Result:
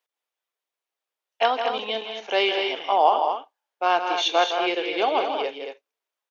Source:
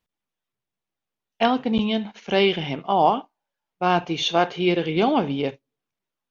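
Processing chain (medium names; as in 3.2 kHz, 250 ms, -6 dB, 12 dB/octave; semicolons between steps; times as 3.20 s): high-pass 440 Hz 24 dB/octave; loudspeakers at several distances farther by 56 m -8 dB, 78 m -7 dB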